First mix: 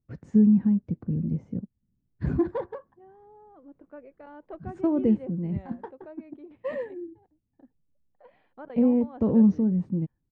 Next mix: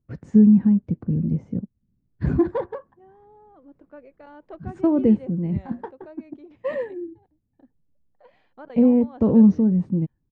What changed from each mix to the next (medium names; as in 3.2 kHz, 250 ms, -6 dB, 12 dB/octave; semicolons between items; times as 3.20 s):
first voice +5.0 dB; second voice: remove distance through air 280 m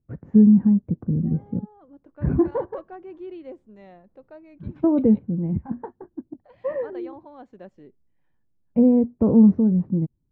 first voice: add low-pass 1.3 kHz 12 dB/octave; second voice: entry -1.75 s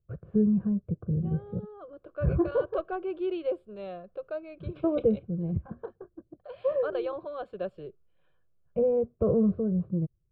second voice +11.0 dB; master: add static phaser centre 1.3 kHz, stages 8